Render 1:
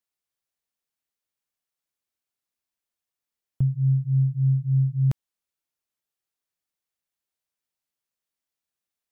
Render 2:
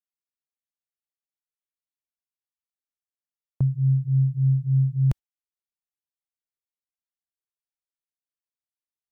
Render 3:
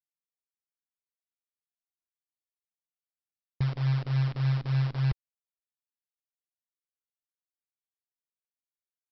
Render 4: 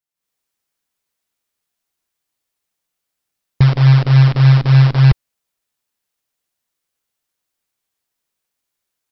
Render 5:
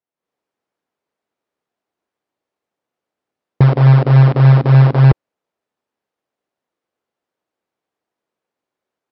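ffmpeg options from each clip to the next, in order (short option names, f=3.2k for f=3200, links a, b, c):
-af "agate=range=-16dB:threshold=-30dB:ratio=16:detection=peak,asubboost=boost=2:cutoff=110"
-af "aecho=1:1:2.3:0.41,aresample=11025,acrusher=bits=6:dc=4:mix=0:aa=0.000001,aresample=44100,volume=-5.5dB"
-af "dynaudnorm=f=140:g=3:m=12dB,volume=5.5dB"
-af "bandpass=f=440:t=q:w=0.79:csg=0,volume=9dB"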